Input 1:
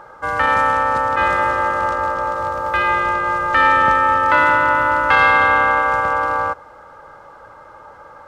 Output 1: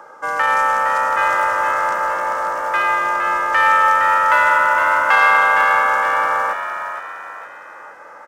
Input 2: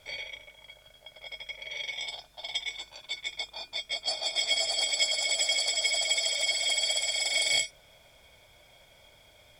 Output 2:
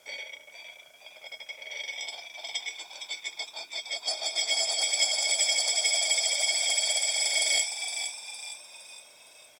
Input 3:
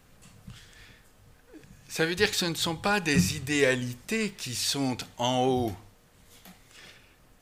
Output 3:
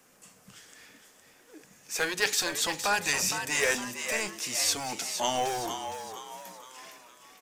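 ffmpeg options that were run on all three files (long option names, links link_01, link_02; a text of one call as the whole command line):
ffmpeg -i in.wav -filter_complex "[0:a]acrossover=split=200 4900:gain=0.0631 1 0.126[link_01][link_02][link_03];[link_01][link_02][link_03]amix=inputs=3:normalize=0,acrossover=split=460[link_04][link_05];[link_04]aeval=exprs='0.0158*(abs(mod(val(0)/0.0158+3,4)-2)-1)':channel_layout=same[link_06];[link_06][link_05]amix=inputs=2:normalize=0,aexciter=amount=6.4:drive=7:freq=5700,asplit=6[link_07][link_08][link_09][link_10][link_11][link_12];[link_08]adelay=462,afreqshift=89,volume=-8dB[link_13];[link_09]adelay=924,afreqshift=178,volume=-15.1dB[link_14];[link_10]adelay=1386,afreqshift=267,volume=-22.3dB[link_15];[link_11]adelay=1848,afreqshift=356,volume=-29.4dB[link_16];[link_12]adelay=2310,afreqshift=445,volume=-36.5dB[link_17];[link_07][link_13][link_14][link_15][link_16][link_17]amix=inputs=6:normalize=0" out.wav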